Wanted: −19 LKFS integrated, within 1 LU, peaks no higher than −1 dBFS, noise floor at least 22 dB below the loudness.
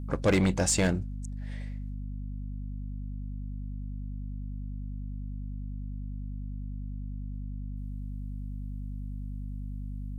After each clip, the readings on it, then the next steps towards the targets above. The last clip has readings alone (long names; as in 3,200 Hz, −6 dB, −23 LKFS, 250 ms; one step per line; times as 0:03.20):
share of clipped samples 0.3%; peaks flattened at −18.0 dBFS; mains hum 50 Hz; hum harmonics up to 250 Hz; level of the hum −34 dBFS; integrated loudness −34.5 LKFS; sample peak −18.0 dBFS; target loudness −19.0 LKFS
→ clipped peaks rebuilt −18 dBFS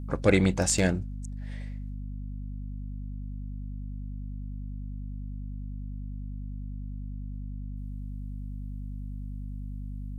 share of clipped samples 0.0%; mains hum 50 Hz; hum harmonics up to 250 Hz; level of the hum −34 dBFS
→ hum removal 50 Hz, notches 5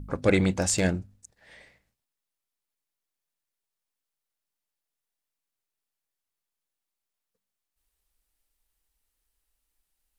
mains hum none found; integrated loudness −25.0 LKFS; sample peak −8.5 dBFS; target loudness −19.0 LKFS
→ level +6 dB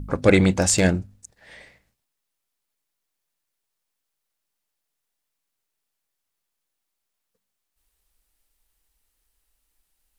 integrated loudness −19.0 LKFS; sample peak −2.5 dBFS; background noise floor −81 dBFS